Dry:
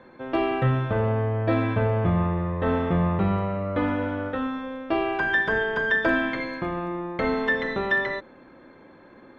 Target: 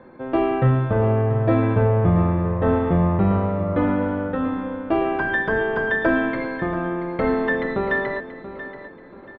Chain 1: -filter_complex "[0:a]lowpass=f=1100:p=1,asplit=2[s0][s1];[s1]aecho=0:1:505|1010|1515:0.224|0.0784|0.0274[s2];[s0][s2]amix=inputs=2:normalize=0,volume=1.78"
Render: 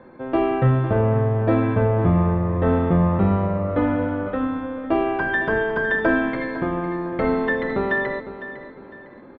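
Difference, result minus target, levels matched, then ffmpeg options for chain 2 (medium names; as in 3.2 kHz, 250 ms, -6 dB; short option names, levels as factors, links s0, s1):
echo 177 ms early
-filter_complex "[0:a]lowpass=f=1100:p=1,asplit=2[s0][s1];[s1]aecho=0:1:682|1364|2046:0.224|0.0784|0.0274[s2];[s0][s2]amix=inputs=2:normalize=0,volume=1.78"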